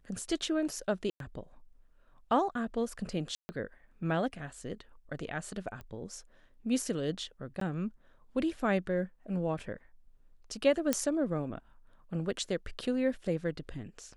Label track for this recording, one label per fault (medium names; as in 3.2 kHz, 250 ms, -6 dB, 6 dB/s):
1.100000	1.200000	dropout 102 ms
3.350000	3.490000	dropout 140 ms
5.810000	5.810000	pop -32 dBFS
7.600000	7.610000	dropout 13 ms
10.930000	10.930000	pop -11 dBFS